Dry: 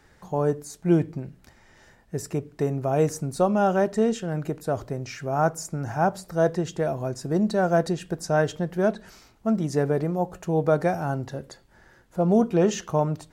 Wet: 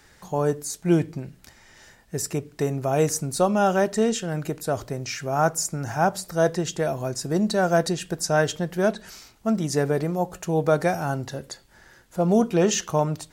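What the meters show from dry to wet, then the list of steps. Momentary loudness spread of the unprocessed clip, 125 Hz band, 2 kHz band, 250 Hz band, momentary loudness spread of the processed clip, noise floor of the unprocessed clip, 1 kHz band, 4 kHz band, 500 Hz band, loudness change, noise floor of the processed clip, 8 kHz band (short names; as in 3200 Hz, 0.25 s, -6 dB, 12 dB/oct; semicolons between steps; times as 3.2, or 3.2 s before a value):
10 LU, 0.0 dB, +4.0 dB, 0.0 dB, 10 LU, -57 dBFS, +1.5 dB, +8.0 dB, +0.5 dB, +1.0 dB, -56 dBFS, +9.0 dB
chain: high shelf 2100 Hz +10 dB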